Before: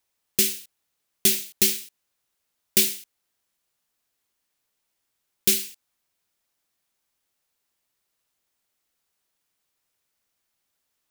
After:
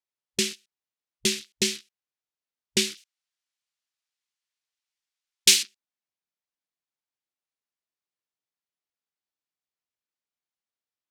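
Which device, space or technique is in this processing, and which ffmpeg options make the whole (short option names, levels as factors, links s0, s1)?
over-cleaned archive recording: -filter_complex "[0:a]asettb=1/sr,asplit=3[s0][s1][s2];[s0]atrim=end=2.974[s3];[s1]atrim=start=2.97:end=5.63,asetpts=PTS-STARTPTS,afade=t=in:d=0.004:c=qsin,afade=t=out:st=2.656:d=0.004:c=qsin,tiltshelf=f=840:g=-10[s4];[s2]atrim=start=5.626[s5];[s3][s4]acrossfade=d=0.004:c1=hsin:c2=qsin[s6];[s6][s5]acrossfade=d=0.004:c1=qsin:c2=hsin,highpass=100,lowpass=6300,afwtdn=0.01,volume=1.12"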